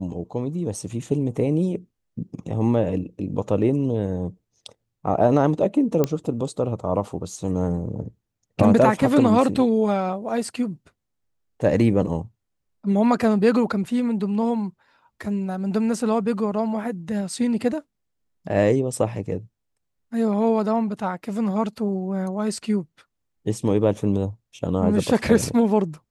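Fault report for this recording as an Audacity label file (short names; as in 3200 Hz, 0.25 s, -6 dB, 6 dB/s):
6.040000	6.040000	pop -8 dBFS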